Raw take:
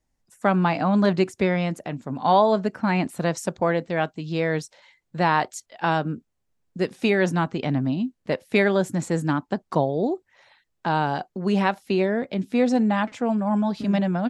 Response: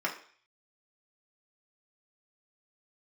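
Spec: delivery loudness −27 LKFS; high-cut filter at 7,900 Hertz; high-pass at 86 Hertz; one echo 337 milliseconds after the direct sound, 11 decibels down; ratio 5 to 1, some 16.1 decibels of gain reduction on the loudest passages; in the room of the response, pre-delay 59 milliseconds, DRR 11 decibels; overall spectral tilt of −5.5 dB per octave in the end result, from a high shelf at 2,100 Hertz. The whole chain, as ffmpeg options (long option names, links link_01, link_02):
-filter_complex "[0:a]highpass=86,lowpass=7900,highshelf=frequency=2100:gain=6.5,acompressor=threshold=-32dB:ratio=5,aecho=1:1:337:0.282,asplit=2[link_01][link_02];[1:a]atrim=start_sample=2205,adelay=59[link_03];[link_02][link_03]afir=irnorm=-1:irlink=0,volume=-19dB[link_04];[link_01][link_04]amix=inputs=2:normalize=0,volume=8dB"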